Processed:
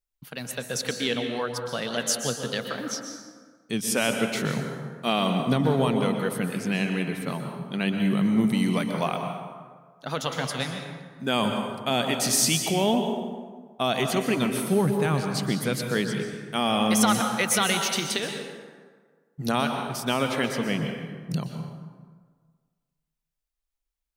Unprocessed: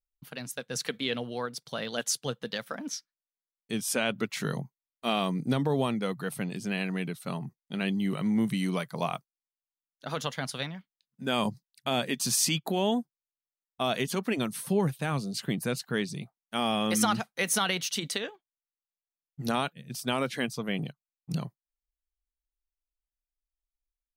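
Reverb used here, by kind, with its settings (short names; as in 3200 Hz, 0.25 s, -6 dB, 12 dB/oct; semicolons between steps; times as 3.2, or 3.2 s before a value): plate-style reverb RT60 1.6 s, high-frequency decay 0.55×, pre-delay 0.11 s, DRR 4 dB; gain +3.5 dB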